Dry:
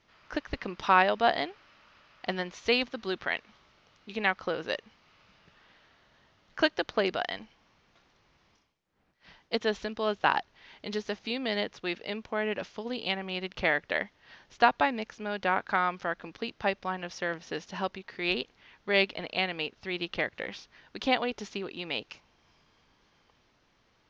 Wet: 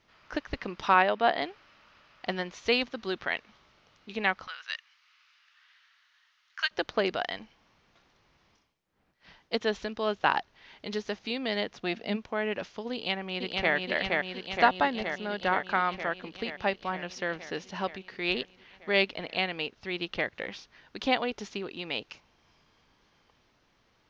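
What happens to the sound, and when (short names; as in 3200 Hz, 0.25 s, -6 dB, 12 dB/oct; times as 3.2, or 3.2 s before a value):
0.94–1.42 BPF 160–3800 Hz
4.47–6.71 HPF 1300 Hz 24 dB/oct
11.72–12.15 small resonant body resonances 220/690 Hz, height 9 dB -> 12 dB
12.93–13.74 echo throw 0.47 s, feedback 75%, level -2 dB
14.64–15.69 notch 2400 Hz, Q 8.1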